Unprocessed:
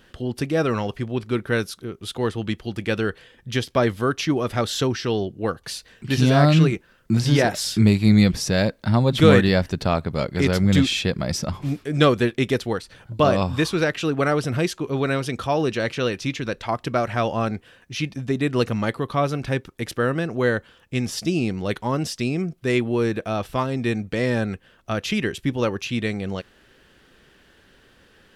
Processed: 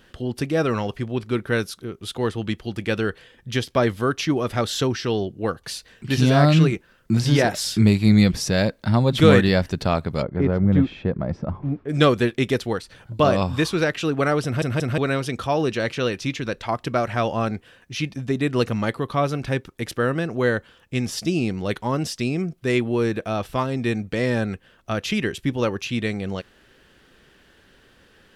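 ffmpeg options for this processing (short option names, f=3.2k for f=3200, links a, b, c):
-filter_complex "[0:a]asplit=3[a][b][c];[a]afade=t=out:st=10.21:d=0.02[d];[b]lowpass=1.1k,afade=t=in:st=10.21:d=0.02,afade=t=out:st=11.88:d=0.02[e];[c]afade=t=in:st=11.88:d=0.02[f];[d][e][f]amix=inputs=3:normalize=0,asplit=4[g][h][i][j];[g]atrim=end=14.622[k];[h]atrim=start=14.438:end=14.622[l];[i]atrim=start=14.438:end=14.622[m];[j]atrim=start=14.978[n];[k][l]acrossfade=d=0.004:c1=hsin:c2=hsin[o];[o][m]acrossfade=d=0.004:c1=hsin:c2=hsin[p];[p][n]acrossfade=d=0.004:c1=hsin:c2=hsin"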